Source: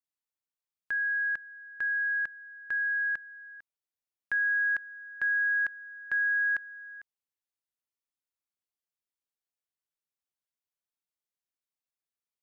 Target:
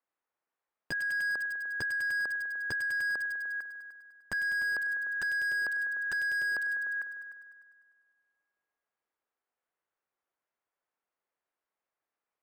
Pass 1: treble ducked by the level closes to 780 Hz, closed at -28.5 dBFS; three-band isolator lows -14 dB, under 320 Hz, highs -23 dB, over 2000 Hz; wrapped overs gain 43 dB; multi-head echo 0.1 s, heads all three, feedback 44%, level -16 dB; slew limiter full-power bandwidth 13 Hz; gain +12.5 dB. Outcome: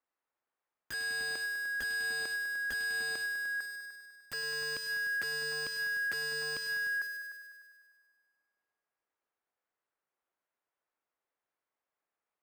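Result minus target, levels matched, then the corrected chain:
wrapped overs: distortion +20 dB
treble ducked by the level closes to 780 Hz, closed at -28.5 dBFS; three-band isolator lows -14 dB, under 320 Hz, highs -23 dB, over 2000 Hz; wrapped overs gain 32.5 dB; multi-head echo 0.1 s, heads all three, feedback 44%, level -16 dB; slew limiter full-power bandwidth 13 Hz; gain +12.5 dB

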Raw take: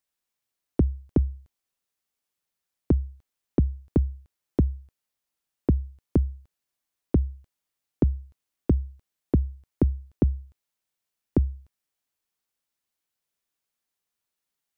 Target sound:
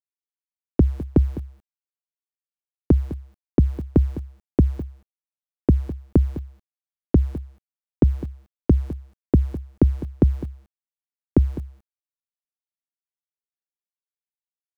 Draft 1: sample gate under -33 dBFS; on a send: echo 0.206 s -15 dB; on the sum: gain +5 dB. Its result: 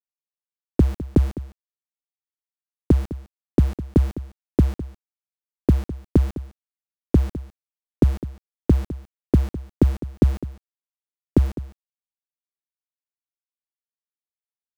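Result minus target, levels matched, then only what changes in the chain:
sample gate: distortion +12 dB
change: sample gate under -44.5 dBFS

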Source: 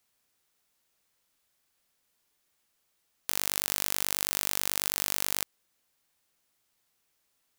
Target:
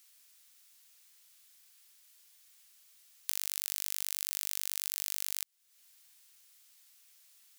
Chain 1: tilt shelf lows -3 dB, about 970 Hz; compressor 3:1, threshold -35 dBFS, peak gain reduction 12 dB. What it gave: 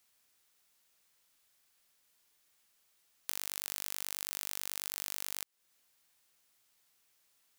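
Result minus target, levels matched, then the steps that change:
1000 Hz band +9.0 dB
change: tilt shelf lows -13.5 dB, about 970 Hz

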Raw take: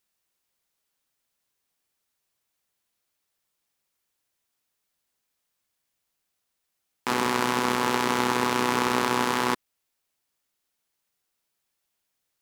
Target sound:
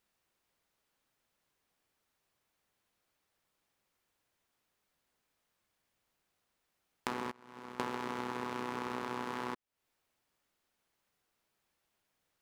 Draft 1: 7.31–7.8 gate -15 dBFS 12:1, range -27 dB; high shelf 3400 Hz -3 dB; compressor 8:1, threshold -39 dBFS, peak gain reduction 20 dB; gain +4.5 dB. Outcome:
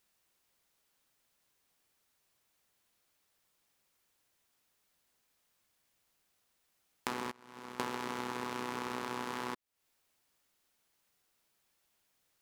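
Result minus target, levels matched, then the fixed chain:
8000 Hz band +5.0 dB
7.31–7.8 gate -15 dBFS 12:1, range -27 dB; high shelf 3400 Hz -11 dB; compressor 8:1, threshold -39 dBFS, peak gain reduction 19 dB; gain +4.5 dB

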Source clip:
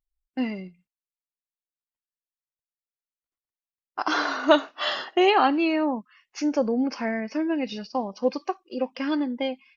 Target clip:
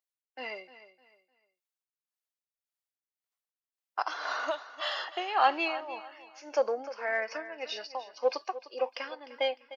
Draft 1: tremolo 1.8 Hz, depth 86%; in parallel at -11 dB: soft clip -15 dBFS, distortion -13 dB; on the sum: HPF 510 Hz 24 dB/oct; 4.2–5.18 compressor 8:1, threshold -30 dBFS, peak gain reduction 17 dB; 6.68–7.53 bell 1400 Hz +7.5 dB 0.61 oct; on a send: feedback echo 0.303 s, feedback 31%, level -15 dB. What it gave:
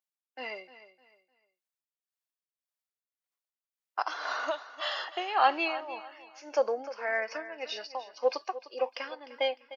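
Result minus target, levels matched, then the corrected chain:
soft clip: distortion -5 dB
tremolo 1.8 Hz, depth 86%; in parallel at -11 dB: soft clip -21.5 dBFS, distortion -8 dB; on the sum: HPF 510 Hz 24 dB/oct; 4.2–5.18 compressor 8:1, threshold -30 dBFS, peak gain reduction 16.5 dB; 6.68–7.53 bell 1400 Hz +7.5 dB 0.61 oct; on a send: feedback echo 0.303 s, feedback 31%, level -15 dB

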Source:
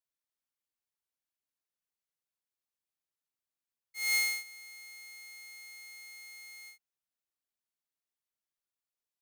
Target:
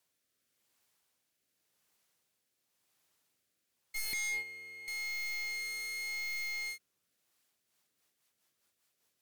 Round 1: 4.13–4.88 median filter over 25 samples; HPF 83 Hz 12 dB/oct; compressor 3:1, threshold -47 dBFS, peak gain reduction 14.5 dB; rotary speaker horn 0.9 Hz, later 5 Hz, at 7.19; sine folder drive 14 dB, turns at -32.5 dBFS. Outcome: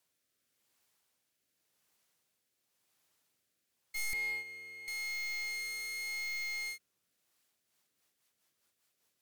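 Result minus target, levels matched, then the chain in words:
compressor: peak gain reduction +6 dB
4.13–4.88 median filter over 25 samples; HPF 83 Hz 12 dB/oct; compressor 3:1, threshold -38 dBFS, peak gain reduction 8.5 dB; rotary speaker horn 0.9 Hz, later 5 Hz, at 7.19; sine folder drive 14 dB, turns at -32.5 dBFS

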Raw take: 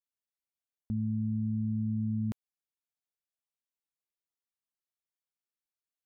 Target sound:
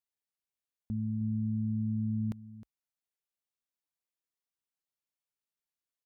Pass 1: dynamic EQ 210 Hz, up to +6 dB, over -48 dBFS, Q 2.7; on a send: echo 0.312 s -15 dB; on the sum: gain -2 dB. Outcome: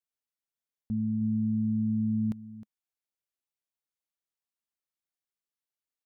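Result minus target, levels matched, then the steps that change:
125 Hz band -3.5 dB
change: dynamic EQ 54 Hz, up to +6 dB, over -48 dBFS, Q 2.7

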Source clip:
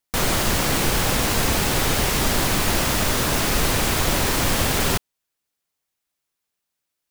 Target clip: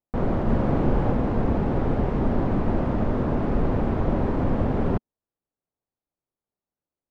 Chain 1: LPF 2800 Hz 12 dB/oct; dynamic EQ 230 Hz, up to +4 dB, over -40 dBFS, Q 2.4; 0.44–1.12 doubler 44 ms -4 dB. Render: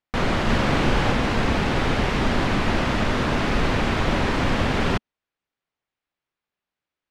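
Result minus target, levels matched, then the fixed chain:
2000 Hz band +13.0 dB
LPF 710 Hz 12 dB/oct; dynamic EQ 230 Hz, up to +4 dB, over -40 dBFS, Q 2.4; 0.44–1.12 doubler 44 ms -4 dB

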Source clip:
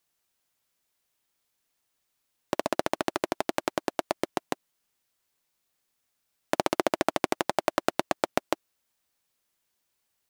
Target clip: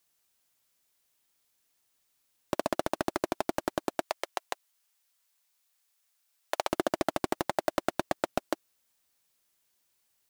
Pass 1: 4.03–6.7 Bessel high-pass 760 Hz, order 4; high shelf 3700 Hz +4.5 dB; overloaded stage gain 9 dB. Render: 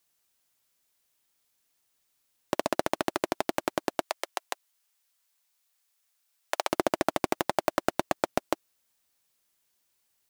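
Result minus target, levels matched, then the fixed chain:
overloaded stage: distortion -7 dB
4.03–6.7 Bessel high-pass 760 Hz, order 4; high shelf 3700 Hz +4.5 dB; overloaded stage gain 15 dB

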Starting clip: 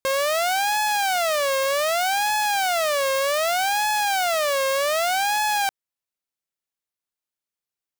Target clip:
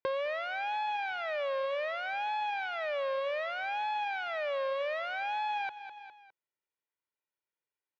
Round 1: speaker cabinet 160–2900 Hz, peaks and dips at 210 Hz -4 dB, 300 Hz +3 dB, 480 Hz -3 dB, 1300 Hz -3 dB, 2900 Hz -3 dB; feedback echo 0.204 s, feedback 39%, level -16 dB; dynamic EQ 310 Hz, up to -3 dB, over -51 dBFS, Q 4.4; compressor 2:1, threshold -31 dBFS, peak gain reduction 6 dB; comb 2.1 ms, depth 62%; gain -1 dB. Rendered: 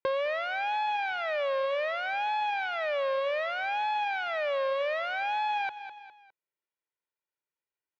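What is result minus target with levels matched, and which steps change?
compressor: peak gain reduction -4 dB
change: compressor 2:1, threshold -38.5 dBFS, peak gain reduction 10 dB

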